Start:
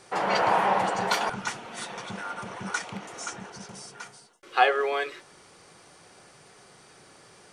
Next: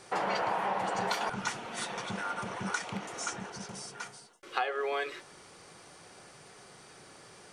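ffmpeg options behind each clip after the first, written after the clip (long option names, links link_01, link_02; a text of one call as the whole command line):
ffmpeg -i in.wav -af "acompressor=threshold=-28dB:ratio=8" out.wav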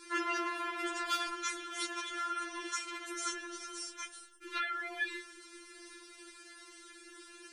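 ffmpeg -i in.wav -af "asuperstop=centerf=790:order=4:qfactor=1.4,afftfilt=real='re*4*eq(mod(b,16),0)':imag='im*4*eq(mod(b,16),0)':win_size=2048:overlap=0.75,volume=3.5dB" out.wav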